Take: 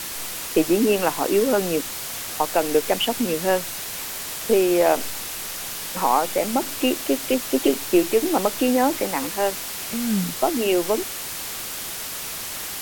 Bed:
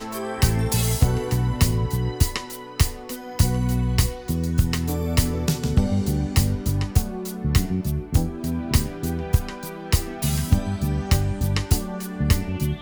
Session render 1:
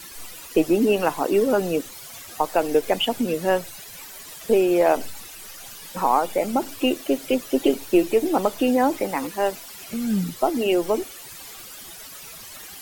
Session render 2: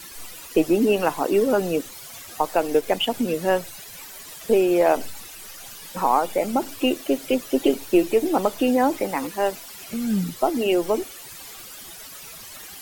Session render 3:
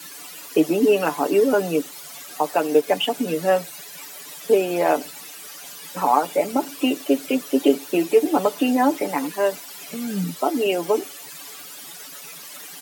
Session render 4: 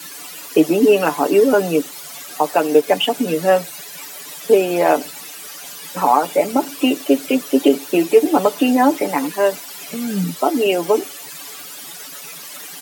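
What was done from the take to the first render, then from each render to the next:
noise reduction 13 dB, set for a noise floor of -32 dBFS
2.55–3.14 s: companding laws mixed up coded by A
steep high-pass 160 Hz 36 dB/octave; comb 6.9 ms
trim +4.5 dB; peak limiter -1 dBFS, peak gain reduction 2.5 dB

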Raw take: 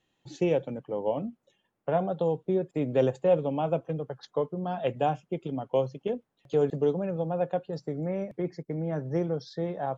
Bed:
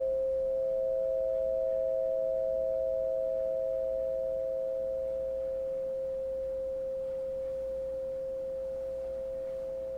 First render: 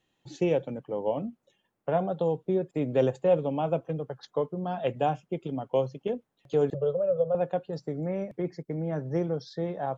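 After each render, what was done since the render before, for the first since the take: 6.74–7.35 s: FFT filter 140 Hz 0 dB, 280 Hz -30 dB, 550 Hz +12 dB, 840 Hz -14 dB, 1.3 kHz +3 dB, 1.9 kHz -23 dB, 3.2 kHz -4 dB, 6 kHz -28 dB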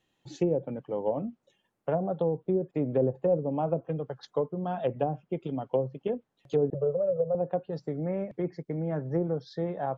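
low-pass that closes with the level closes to 540 Hz, closed at -21.5 dBFS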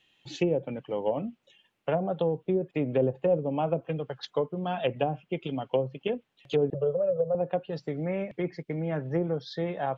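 peaking EQ 2.8 kHz +14.5 dB 1.3 oct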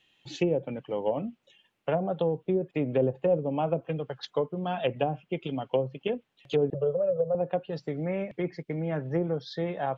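no audible change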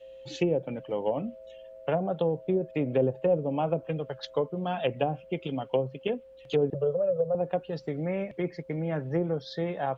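add bed -17 dB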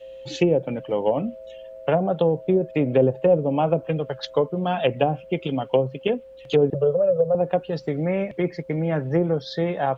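trim +7 dB

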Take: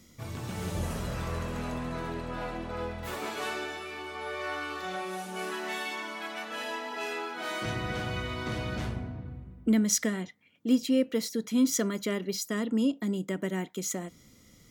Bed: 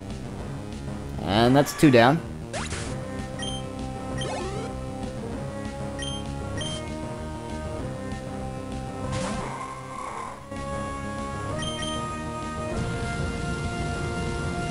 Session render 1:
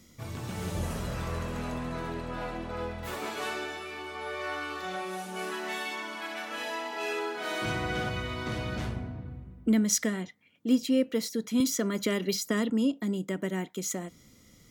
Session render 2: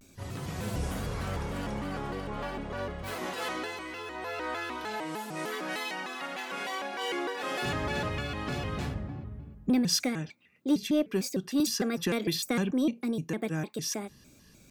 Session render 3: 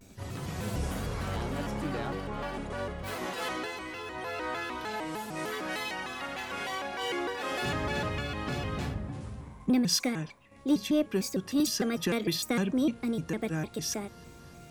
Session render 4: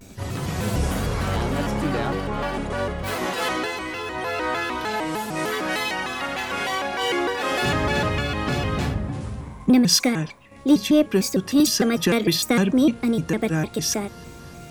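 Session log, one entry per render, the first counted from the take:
6.06–8.09 s: flutter echo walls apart 11.5 m, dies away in 0.71 s; 11.60–12.70 s: three bands compressed up and down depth 100%
saturation -16 dBFS, distortion -23 dB; vibrato with a chosen wave square 3.3 Hz, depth 250 cents
add bed -22 dB
trim +9.5 dB

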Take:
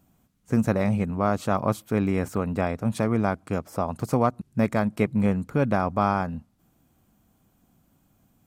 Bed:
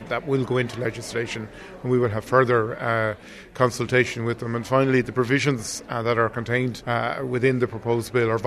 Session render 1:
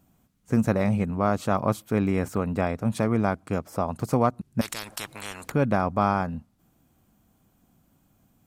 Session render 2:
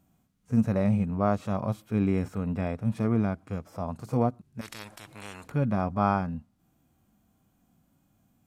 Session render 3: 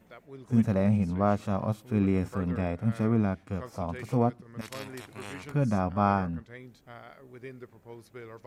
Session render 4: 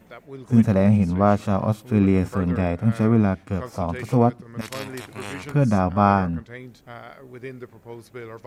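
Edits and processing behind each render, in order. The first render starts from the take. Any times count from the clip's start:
4.61–5.52 s: spectrum-flattening compressor 10:1
harmonic-percussive split percussive -15 dB; treble shelf 10 kHz -3.5 dB
add bed -23.5 dB
trim +7.5 dB

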